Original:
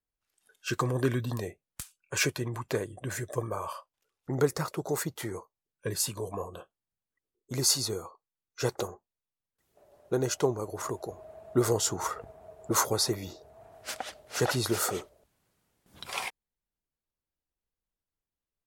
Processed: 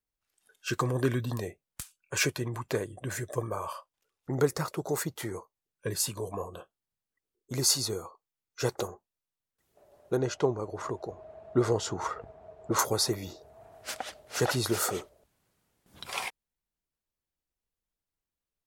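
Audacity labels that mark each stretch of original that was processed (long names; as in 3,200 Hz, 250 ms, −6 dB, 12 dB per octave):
10.170000	12.790000	Bessel low-pass filter 3,900 Hz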